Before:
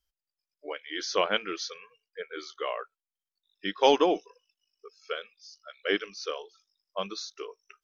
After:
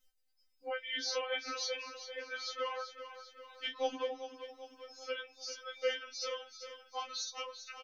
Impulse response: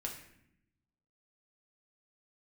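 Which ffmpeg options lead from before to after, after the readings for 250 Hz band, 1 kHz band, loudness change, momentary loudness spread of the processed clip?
-18.0 dB, -10.0 dB, -9.0 dB, 13 LU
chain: -filter_complex "[0:a]acompressor=threshold=-40dB:ratio=6,asplit=2[a][b];[b]adelay=18,volume=-9.5dB[c];[a][c]amix=inputs=2:normalize=0,asplit=2[d][e];[e]aecho=0:1:392|784|1176|1568|1960|2352:0.282|0.149|0.0792|0.042|0.0222|0.0118[f];[d][f]amix=inputs=2:normalize=0,afftfilt=real='re*3.46*eq(mod(b,12),0)':imag='im*3.46*eq(mod(b,12),0)':win_size=2048:overlap=0.75,volume=8dB"

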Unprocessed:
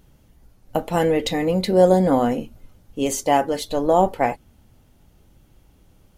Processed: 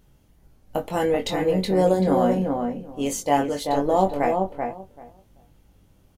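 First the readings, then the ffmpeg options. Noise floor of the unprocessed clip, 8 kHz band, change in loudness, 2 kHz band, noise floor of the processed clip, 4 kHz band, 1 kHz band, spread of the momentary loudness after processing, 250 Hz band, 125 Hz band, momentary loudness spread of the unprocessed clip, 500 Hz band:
-56 dBFS, -3.0 dB, -3.0 dB, -2.5 dB, -58 dBFS, -3.5 dB, -2.0 dB, 12 LU, -1.5 dB, -2.0 dB, 13 LU, -2.5 dB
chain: -filter_complex "[0:a]asplit=2[a][b];[b]adelay=21,volume=-5.5dB[c];[a][c]amix=inputs=2:normalize=0,asplit=2[d][e];[e]adelay=386,lowpass=f=1.4k:p=1,volume=-3.5dB,asplit=2[f][g];[g]adelay=386,lowpass=f=1.4k:p=1,volume=0.17,asplit=2[h][i];[i]adelay=386,lowpass=f=1.4k:p=1,volume=0.17[j];[f][h][j]amix=inputs=3:normalize=0[k];[d][k]amix=inputs=2:normalize=0,volume=-4.5dB"

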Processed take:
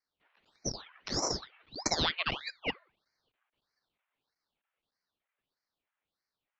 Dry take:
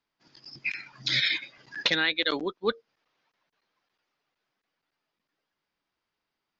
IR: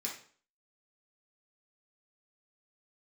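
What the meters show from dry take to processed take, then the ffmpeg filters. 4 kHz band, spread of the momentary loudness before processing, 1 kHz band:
-7.0 dB, 13 LU, -0.5 dB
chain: -filter_complex "[0:a]adynamicsmooth=sensitivity=1:basefreq=2.3k,asplit=2[a][b];[1:a]atrim=start_sample=2205[c];[b][c]afir=irnorm=-1:irlink=0,volume=-19dB[d];[a][d]amix=inputs=2:normalize=0,highpass=f=540:t=q:w=0.5412,highpass=f=540:t=q:w=1.307,lowpass=f=3.1k:t=q:w=0.5176,lowpass=f=3.1k:t=q:w=0.7071,lowpass=f=3.1k:t=q:w=1.932,afreqshift=380,aeval=exprs='val(0)*sin(2*PI*1700*n/s+1700*0.9/1.6*sin(2*PI*1.6*n/s))':c=same,volume=1dB"

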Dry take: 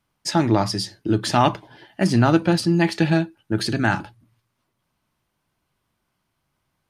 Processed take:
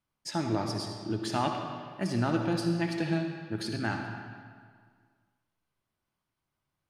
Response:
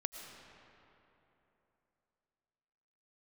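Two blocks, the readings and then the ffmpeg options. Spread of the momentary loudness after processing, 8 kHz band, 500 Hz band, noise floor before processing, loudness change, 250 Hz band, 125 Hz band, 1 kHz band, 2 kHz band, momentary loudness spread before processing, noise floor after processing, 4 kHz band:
10 LU, -11.5 dB, -10.5 dB, -76 dBFS, -11.0 dB, -10.5 dB, -11.0 dB, -11.0 dB, -11.0 dB, 8 LU, -85 dBFS, -11.0 dB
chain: -filter_complex "[1:a]atrim=start_sample=2205,asetrate=79380,aresample=44100[a];[0:a][a]afir=irnorm=-1:irlink=0,volume=-5.5dB"

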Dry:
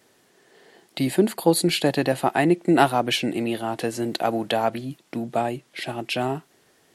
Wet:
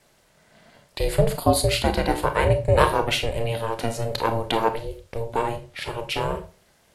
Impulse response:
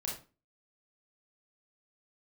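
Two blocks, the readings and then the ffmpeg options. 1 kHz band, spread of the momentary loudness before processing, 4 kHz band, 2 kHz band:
+0.5 dB, 13 LU, -0.5 dB, 0.0 dB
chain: -filter_complex "[0:a]aeval=exprs='val(0)*sin(2*PI*230*n/s)':c=same,asplit=2[a][b];[1:a]atrim=start_sample=2205[c];[b][c]afir=irnorm=-1:irlink=0,volume=-4dB[d];[a][d]amix=inputs=2:normalize=0,volume=-1dB"

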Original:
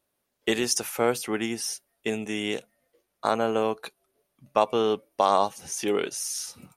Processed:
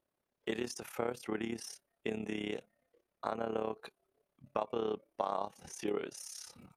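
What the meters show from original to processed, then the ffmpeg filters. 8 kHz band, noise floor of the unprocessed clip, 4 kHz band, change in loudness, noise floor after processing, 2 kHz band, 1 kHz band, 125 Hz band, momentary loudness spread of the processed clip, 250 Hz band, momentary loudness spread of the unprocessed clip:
-17.0 dB, -78 dBFS, -15.5 dB, -12.5 dB, under -85 dBFS, -12.5 dB, -13.5 dB, -9.0 dB, 8 LU, -9.5 dB, 9 LU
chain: -af "acompressor=threshold=-29dB:ratio=2.5,tremolo=f=34:d=0.75,highshelf=f=3.4k:g=-11.5,volume=-1.5dB"

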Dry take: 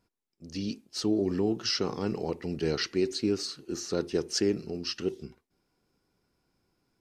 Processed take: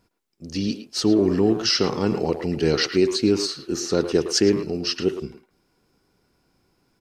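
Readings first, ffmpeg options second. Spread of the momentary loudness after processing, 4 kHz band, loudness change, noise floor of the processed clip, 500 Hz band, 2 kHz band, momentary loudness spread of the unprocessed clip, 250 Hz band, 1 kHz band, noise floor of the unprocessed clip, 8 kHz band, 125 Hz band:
8 LU, +8.5 dB, +8.5 dB, -69 dBFS, +9.0 dB, +9.0 dB, 8 LU, +9.0 dB, +9.0 dB, -82 dBFS, +8.5 dB, +8.5 dB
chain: -filter_complex "[0:a]asplit=2[a][b];[b]adelay=110,highpass=300,lowpass=3.4k,asoftclip=type=hard:threshold=-25.5dB,volume=-8dB[c];[a][c]amix=inputs=2:normalize=0,volume=8.5dB"

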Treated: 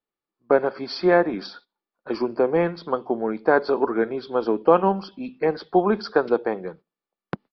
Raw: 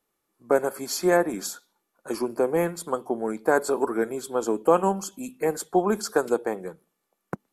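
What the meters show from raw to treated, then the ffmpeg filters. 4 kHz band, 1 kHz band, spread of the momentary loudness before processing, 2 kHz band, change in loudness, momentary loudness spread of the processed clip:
+1.5 dB, +3.0 dB, 13 LU, +3.0 dB, +3.0 dB, 14 LU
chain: -af "agate=range=-15dB:threshold=-46dB:ratio=16:detection=peak,aresample=11025,aresample=44100,volume=3dB"

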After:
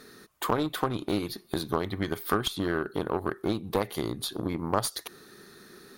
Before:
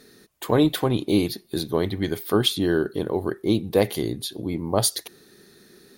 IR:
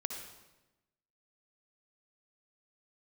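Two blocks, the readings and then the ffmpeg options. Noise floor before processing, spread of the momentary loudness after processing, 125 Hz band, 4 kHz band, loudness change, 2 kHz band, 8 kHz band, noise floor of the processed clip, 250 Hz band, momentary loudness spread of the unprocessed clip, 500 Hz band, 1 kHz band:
-54 dBFS, 15 LU, -7.5 dB, -7.5 dB, -7.0 dB, -2.0 dB, -8.0 dB, -54 dBFS, -7.5 dB, 9 LU, -7.5 dB, 0.0 dB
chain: -af "acompressor=threshold=-29dB:ratio=4,aeval=exprs='0.126*(cos(1*acos(clip(val(0)/0.126,-1,1)))-cos(1*PI/2))+0.0501*(cos(2*acos(clip(val(0)/0.126,-1,1)))-cos(2*PI/2))+0.00631*(cos(8*acos(clip(val(0)/0.126,-1,1)))-cos(8*PI/2))':c=same,equalizer=f=1.2k:t=o:w=0.85:g=9.5"

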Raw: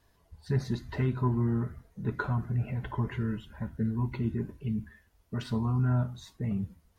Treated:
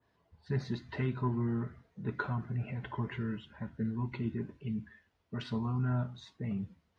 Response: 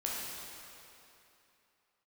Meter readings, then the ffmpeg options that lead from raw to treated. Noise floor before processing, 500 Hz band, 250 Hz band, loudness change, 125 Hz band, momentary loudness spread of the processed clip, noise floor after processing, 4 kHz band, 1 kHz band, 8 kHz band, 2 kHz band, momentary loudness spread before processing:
-67 dBFS, -3.5 dB, -4.0 dB, -4.5 dB, -5.5 dB, 9 LU, -75 dBFS, -1.5 dB, -3.0 dB, n/a, -1.5 dB, 9 LU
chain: -af "highpass=110,lowpass=3.6k,adynamicequalizer=threshold=0.002:dfrequency=1900:dqfactor=0.7:tfrequency=1900:tqfactor=0.7:attack=5:release=100:ratio=0.375:range=3:mode=boostabove:tftype=highshelf,volume=-3.5dB"

